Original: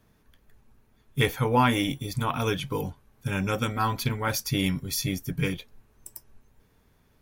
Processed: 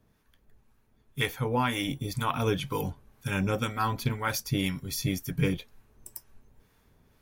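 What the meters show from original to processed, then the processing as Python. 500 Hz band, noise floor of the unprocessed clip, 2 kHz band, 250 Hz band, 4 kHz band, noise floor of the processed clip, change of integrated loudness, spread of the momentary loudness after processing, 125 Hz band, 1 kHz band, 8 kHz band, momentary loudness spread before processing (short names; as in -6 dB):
-2.5 dB, -64 dBFS, -2.5 dB, -2.5 dB, -3.0 dB, -67 dBFS, -2.5 dB, 12 LU, -2.0 dB, -3.5 dB, -3.5 dB, 15 LU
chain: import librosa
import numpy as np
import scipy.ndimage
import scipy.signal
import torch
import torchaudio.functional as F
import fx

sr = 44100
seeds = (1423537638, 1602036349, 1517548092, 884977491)

y = fx.rider(x, sr, range_db=4, speed_s=0.5)
y = fx.harmonic_tremolo(y, sr, hz=2.0, depth_pct=50, crossover_hz=820.0)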